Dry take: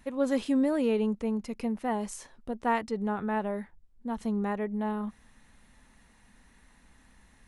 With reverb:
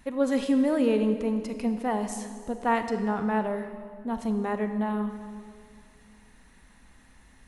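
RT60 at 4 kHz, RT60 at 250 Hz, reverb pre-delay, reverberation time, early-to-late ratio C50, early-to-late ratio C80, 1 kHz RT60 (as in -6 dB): 1.8 s, 2.6 s, 28 ms, 2.1 s, 8.5 dB, 9.5 dB, 1.9 s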